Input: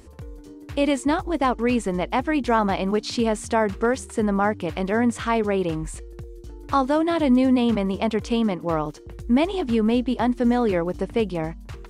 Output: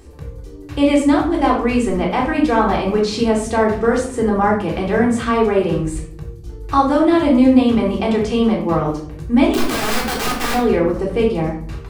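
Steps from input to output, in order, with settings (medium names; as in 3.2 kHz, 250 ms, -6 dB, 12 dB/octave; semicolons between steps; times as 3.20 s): 9.52–10.54 s: integer overflow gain 20.5 dB; reverberation RT60 0.55 s, pre-delay 3 ms, DRR -3 dB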